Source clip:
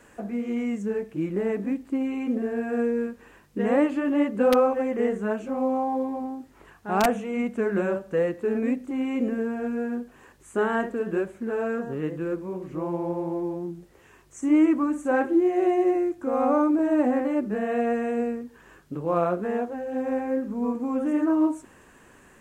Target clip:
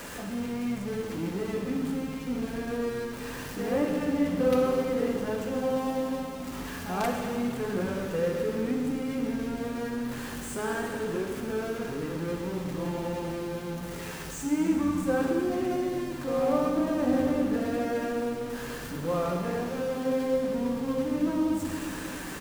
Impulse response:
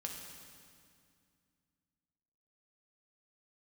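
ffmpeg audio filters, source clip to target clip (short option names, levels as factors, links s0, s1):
-filter_complex "[0:a]aeval=exprs='val(0)+0.5*0.0501*sgn(val(0))':c=same,asplit=6[s0][s1][s2][s3][s4][s5];[s1]adelay=132,afreqshift=-110,volume=0.178[s6];[s2]adelay=264,afreqshift=-220,volume=0.1[s7];[s3]adelay=396,afreqshift=-330,volume=0.0556[s8];[s4]adelay=528,afreqshift=-440,volume=0.0313[s9];[s5]adelay=660,afreqshift=-550,volume=0.0176[s10];[s0][s6][s7][s8][s9][s10]amix=inputs=6:normalize=0[s11];[1:a]atrim=start_sample=2205[s12];[s11][s12]afir=irnorm=-1:irlink=0,volume=0.473"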